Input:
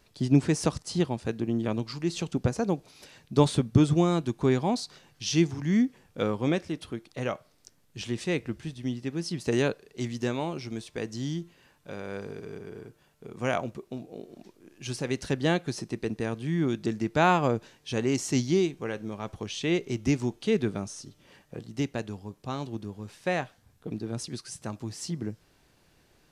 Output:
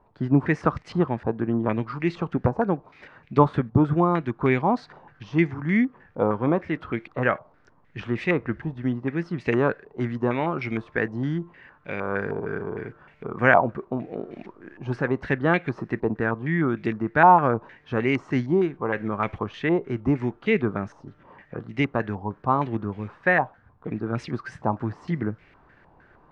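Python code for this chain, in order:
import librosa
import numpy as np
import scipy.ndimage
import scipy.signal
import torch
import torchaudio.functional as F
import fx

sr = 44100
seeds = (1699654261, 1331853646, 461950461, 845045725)

p1 = fx.rider(x, sr, range_db=10, speed_s=0.5)
p2 = x + F.gain(torch.from_numpy(p1), 0.0).numpy()
p3 = fx.filter_held_lowpass(p2, sr, hz=6.5, low_hz=920.0, high_hz=2200.0)
y = F.gain(torch.from_numpy(p3), -3.0).numpy()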